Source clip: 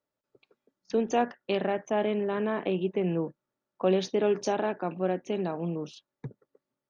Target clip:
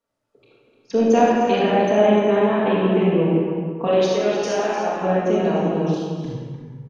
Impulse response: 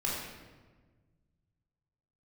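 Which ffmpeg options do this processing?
-filter_complex "[0:a]asettb=1/sr,asplit=3[s0][s1][s2];[s0]atrim=end=3.874[s3];[s1]atrim=start=3.87:end=5.02,asetpts=PTS-STARTPTS,afade=t=in:d=0.004:c=qsin,afade=t=out:st=1.146:d=0.004:c=qsin,equalizer=f=140:t=o:w=3:g=-12[s4];[s2]atrim=start=5.016[s5];[s3][s4]acrossfade=d=0.004:c1=hsin:c2=qsin[s6];[s6][s5]acrossfade=d=0.004:c1=qsin:c2=hsin,aecho=1:1:301:0.335[s7];[1:a]atrim=start_sample=2205,afade=t=out:st=0.4:d=0.01,atrim=end_sample=18081,asetrate=24255,aresample=44100[s8];[s7][s8]afir=irnorm=-1:irlink=0"

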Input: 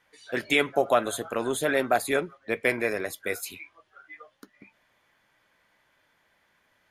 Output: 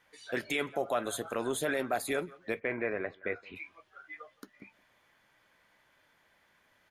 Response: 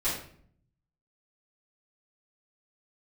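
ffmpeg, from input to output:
-filter_complex "[0:a]asplit=3[s0][s1][s2];[s0]afade=t=out:st=2.59:d=0.02[s3];[s1]lowpass=f=2400:w=0.5412,lowpass=f=2400:w=1.3066,afade=t=in:st=2.59:d=0.02,afade=t=out:st=3.55:d=0.02[s4];[s2]afade=t=in:st=3.55:d=0.02[s5];[s3][s4][s5]amix=inputs=3:normalize=0,asplit=2[s6][s7];[s7]acompressor=threshold=0.0178:ratio=6,volume=1.26[s8];[s6][s8]amix=inputs=2:normalize=0,alimiter=limit=0.224:level=0:latency=1:release=23,asplit=2[s9][s10];[s10]adelay=169.1,volume=0.0562,highshelf=f=4000:g=-3.8[s11];[s9][s11]amix=inputs=2:normalize=0,volume=0.422"

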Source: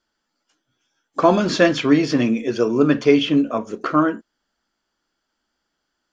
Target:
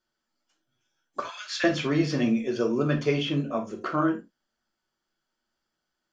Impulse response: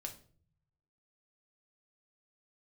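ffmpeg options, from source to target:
-filter_complex "[0:a]asettb=1/sr,asplit=3[s0][s1][s2];[s0]atrim=end=1.204[s3];[s1]atrim=start=1.2:end=1.64,asetpts=PTS-STARTPTS,afade=t=in:d=0.004:c=qsin,afade=t=out:st=0.436:d=0.004:c=qsin,highpass=f=1500:w=0.5412,highpass=f=1500:w=1.3066[s4];[s2]atrim=start=1.636[s5];[s3][s4]acrossfade=d=0.004:c1=hsin:c2=qsin[s6];[s6][s5]acrossfade=d=0.004:c1=qsin:c2=hsin[s7];[1:a]atrim=start_sample=2205,afade=t=out:st=0.14:d=0.01,atrim=end_sample=6615[s8];[s7][s8]afir=irnorm=-1:irlink=0,volume=0.668"

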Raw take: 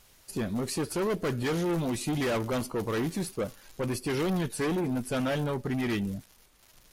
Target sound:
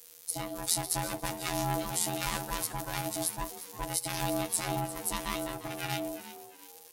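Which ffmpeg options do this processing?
-filter_complex "[0:a]afftfilt=real='hypot(re,im)*cos(PI*b)':imag='0':win_size=1024:overlap=0.75,crystalizer=i=4:c=0,aeval=exprs='val(0)*sin(2*PI*480*n/s)':c=same,asplit=4[s0][s1][s2][s3];[s1]adelay=350,afreqshift=77,volume=0.2[s4];[s2]adelay=700,afreqshift=154,volume=0.0716[s5];[s3]adelay=1050,afreqshift=231,volume=0.026[s6];[s0][s4][s5][s6]amix=inputs=4:normalize=0"

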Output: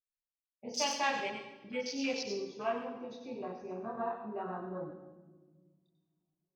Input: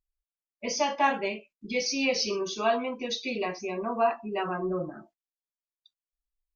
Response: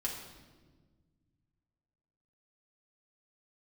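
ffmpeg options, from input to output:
-filter_complex "[0:a]asplit=3[s0][s1][s2];[s0]afade=t=out:st=0.77:d=0.02[s3];[s1]equalizer=f=5500:t=o:w=1.8:g=14.5,afade=t=in:st=0.77:d=0.02,afade=t=out:st=1.27:d=0.02[s4];[s2]afade=t=in:st=1.27:d=0.02[s5];[s3][s4][s5]amix=inputs=3:normalize=0,flanger=delay=20:depth=7.1:speed=0.41,afwtdn=0.0178,asplit=2[s6][s7];[1:a]atrim=start_sample=2205,highshelf=f=3700:g=8.5,adelay=92[s8];[s7][s8]afir=irnorm=-1:irlink=0,volume=0.316[s9];[s6][s9]amix=inputs=2:normalize=0,volume=0.501"

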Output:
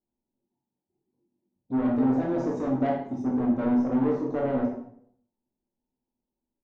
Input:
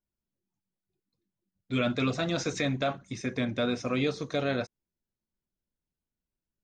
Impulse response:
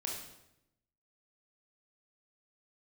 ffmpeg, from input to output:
-filter_complex "[0:a]firequalizer=gain_entry='entry(160,0);entry(240,13);entry(510,5);entry(880,12);entry(1500,-27);entry(5700,-17)':delay=0.05:min_phase=1,asoftclip=type=tanh:threshold=0.0944[s0];[1:a]atrim=start_sample=2205,asetrate=61740,aresample=44100[s1];[s0][s1]afir=irnorm=-1:irlink=0,volume=1.12"

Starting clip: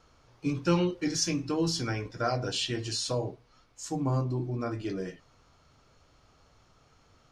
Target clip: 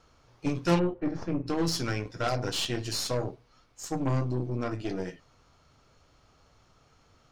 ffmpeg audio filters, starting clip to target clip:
-filter_complex "[0:a]aeval=exprs='0.2*(cos(1*acos(clip(val(0)/0.2,-1,1)))-cos(1*PI/2))+0.0794*(cos(2*acos(clip(val(0)/0.2,-1,1)))-cos(2*PI/2))+0.0251*(cos(8*acos(clip(val(0)/0.2,-1,1)))-cos(8*PI/2))':c=same,asplit=3[s0][s1][s2];[s0]afade=t=out:st=0.78:d=0.02[s3];[s1]lowpass=1200,afade=t=in:st=0.78:d=0.02,afade=t=out:st=1.46:d=0.02[s4];[s2]afade=t=in:st=1.46:d=0.02[s5];[s3][s4][s5]amix=inputs=3:normalize=0"

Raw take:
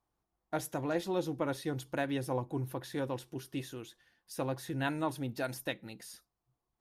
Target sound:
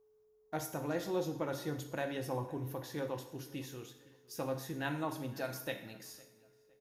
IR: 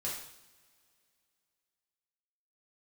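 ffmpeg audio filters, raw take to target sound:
-filter_complex "[0:a]asplit=2[s0][s1];[1:a]atrim=start_sample=2205[s2];[s1][s2]afir=irnorm=-1:irlink=0,volume=0.708[s3];[s0][s3]amix=inputs=2:normalize=0,aeval=exprs='val(0)+0.00112*sin(2*PI*430*n/s)':c=same,aexciter=amount=1.4:drive=4.2:freq=5400,asplit=2[s4][s5];[s5]adelay=509,lowpass=f=3000:p=1,volume=0.0794,asplit=2[s6][s7];[s7]adelay=509,lowpass=f=3000:p=1,volume=0.33[s8];[s4][s6][s8]amix=inputs=3:normalize=0,volume=0.447"

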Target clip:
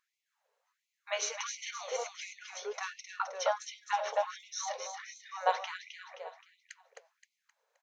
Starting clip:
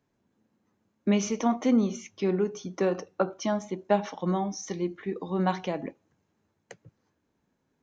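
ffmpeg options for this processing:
-filter_complex "[0:a]asplit=2[s0][s1];[s1]asetrate=29433,aresample=44100,atempo=1.49831,volume=0.355[s2];[s0][s2]amix=inputs=2:normalize=0,aecho=1:1:262|524|786|1048|1310:0.501|0.221|0.097|0.0427|0.0188,afftfilt=real='re*gte(b*sr/1024,400*pow(2000/400,0.5+0.5*sin(2*PI*1.4*pts/sr)))':imag='im*gte(b*sr/1024,400*pow(2000/400,0.5+0.5*sin(2*PI*1.4*pts/sr)))':win_size=1024:overlap=0.75"

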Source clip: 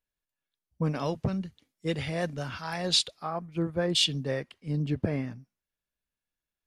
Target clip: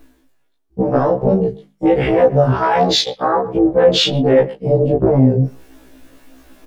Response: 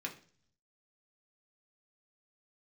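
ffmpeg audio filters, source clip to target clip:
-filter_complex "[0:a]areverse,acompressor=mode=upward:threshold=0.0178:ratio=2.5,areverse,asoftclip=type=hard:threshold=0.119,afwtdn=0.0158,lowshelf=f=77:g=12,tremolo=f=280:d=0.667,flanger=delay=18:depth=5.3:speed=1.4,bandreject=f=50:t=h:w=6,bandreject=f=100:t=h:w=6,bandreject=f=150:t=h:w=6,bandreject=f=200:t=h:w=6,asplit=2[s0][s1];[s1]adelay=120,highpass=300,lowpass=3400,asoftclip=type=hard:threshold=0.0473,volume=0.0631[s2];[s0][s2]amix=inputs=2:normalize=0,acompressor=threshold=0.00355:ratio=2.5,equalizer=f=540:t=o:w=2.6:g=12,alimiter=level_in=35.5:limit=0.891:release=50:level=0:latency=1,afftfilt=real='re*1.73*eq(mod(b,3),0)':imag='im*1.73*eq(mod(b,3),0)':win_size=2048:overlap=0.75"

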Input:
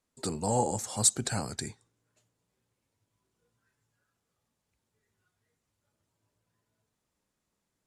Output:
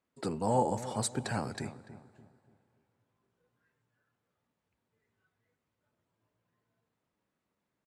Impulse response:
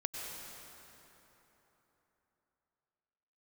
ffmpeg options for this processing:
-filter_complex "[0:a]highpass=f=130:p=1,bass=f=250:g=1,treble=f=4000:g=-14,asetrate=45392,aresample=44100,atempo=0.971532,asplit=2[s0][s1];[s1]adelay=291,lowpass=f=1300:p=1,volume=0.237,asplit=2[s2][s3];[s3]adelay=291,lowpass=f=1300:p=1,volume=0.39,asplit=2[s4][s5];[s5]adelay=291,lowpass=f=1300:p=1,volume=0.39,asplit=2[s6][s7];[s7]adelay=291,lowpass=f=1300:p=1,volume=0.39[s8];[s0][s2][s4][s6][s8]amix=inputs=5:normalize=0,asplit=2[s9][s10];[1:a]atrim=start_sample=2205,asetrate=48510,aresample=44100[s11];[s10][s11]afir=irnorm=-1:irlink=0,volume=0.0794[s12];[s9][s12]amix=inputs=2:normalize=0"

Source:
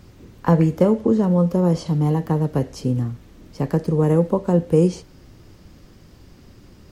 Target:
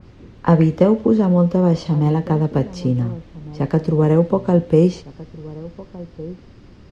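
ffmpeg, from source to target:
-filter_complex "[0:a]lowpass=4200,asplit=2[s0][s1];[s1]adelay=1458,volume=0.126,highshelf=f=4000:g=-32.8[s2];[s0][s2]amix=inputs=2:normalize=0,adynamicequalizer=threshold=0.0141:dfrequency=2300:dqfactor=0.7:tfrequency=2300:tqfactor=0.7:attack=5:release=100:ratio=0.375:range=2:mode=boostabove:tftype=highshelf,volume=1.33"

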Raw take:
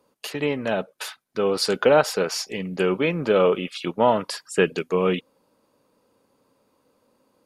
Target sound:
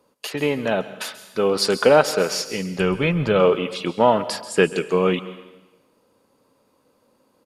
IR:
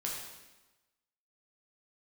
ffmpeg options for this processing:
-filter_complex "[0:a]asplit=3[s0][s1][s2];[s0]afade=t=out:st=2.77:d=0.02[s3];[s1]asubboost=boost=9:cutoff=110,afade=t=in:st=2.77:d=0.02,afade=t=out:st=3.4:d=0.02[s4];[s2]afade=t=in:st=3.4:d=0.02[s5];[s3][s4][s5]amix=inputs=3:normalize=0,asplit=2[s6][s7];[1:a]atrim=start_sample=2205,highshelf=f=5200:g=8.5,adelay=133[s8];[s7][s8]afir=irnorm=-1:irlink=0,volume=0.133[s9];[s6][s9]amix=inputs=2:normalize=0,aresample=32000,aresample=44100,volume=1.33"

